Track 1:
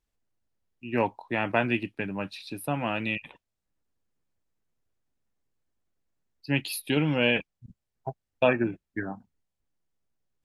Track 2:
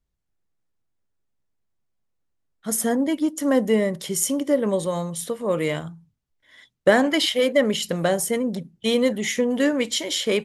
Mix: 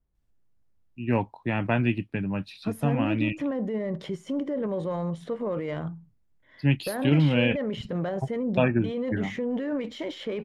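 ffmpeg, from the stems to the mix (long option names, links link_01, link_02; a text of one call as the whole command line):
ffmpeg -i stem1.wav -i stem2.wav -filter_complex "[0:a]bass=frequency=250:gain=12,treble=frequency=4000:gain=-2,adelay=150,volume=-2.5dB[link_01];[1:a]acompressor=threshold=-20dB:ratio=6,alimiter=limit=-24dB:level=0:latency=1:release=17,adynamicsmooth=sensitivity=1:basefreq=1800,volume=2dB[link_02];[link_01][link_02]amix=inputs=2:normalize=0,adynamicequalizer=threshold=0.00398:dfrequency=5400:dqfactor=0.7:tfrequency=5400:tqfactor=0.7:attack=5:release=100:ratio=0.375:range=1.5:mode=cutabove:tftype=highshelf" out.wav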